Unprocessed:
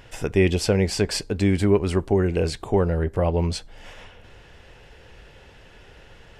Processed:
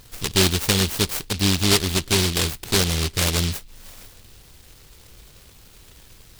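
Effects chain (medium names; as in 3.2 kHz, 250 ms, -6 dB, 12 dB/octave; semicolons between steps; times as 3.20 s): delay time shaken by noise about 3.6 kHz, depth 0.46 ms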